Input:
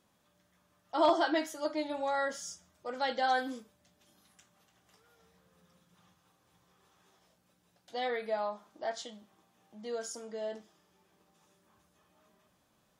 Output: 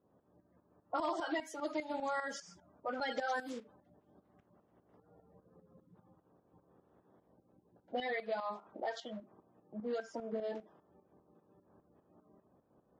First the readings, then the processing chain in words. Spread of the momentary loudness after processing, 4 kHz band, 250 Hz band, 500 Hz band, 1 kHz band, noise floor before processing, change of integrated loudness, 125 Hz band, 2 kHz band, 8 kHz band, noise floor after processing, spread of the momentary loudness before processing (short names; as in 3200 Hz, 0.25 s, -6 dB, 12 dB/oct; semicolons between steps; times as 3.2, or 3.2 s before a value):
11 LU, -7.5 dB, -4.5 dB, -5.5 dB, -6.5 dB, -72 dBFS, -6.0 dB, n/a, -4.0 dB, -9.5 dB, -75 dBFS, 15 LU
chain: bin magnitudes rounded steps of 30 dB; HPF 150 Hz 6 dB/oct; low-pass opened by the level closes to 490 Hz, open at -29.5 dBFS; tremolo saw up 5 Hz, depth 70%; compressor 4:1, threshold -48 dBFS, peak gain reduction 18 dB; gain +11.5 dB